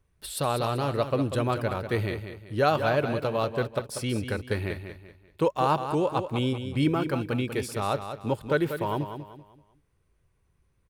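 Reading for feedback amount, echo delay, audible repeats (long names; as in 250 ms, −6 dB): 35%, 192 ms, 3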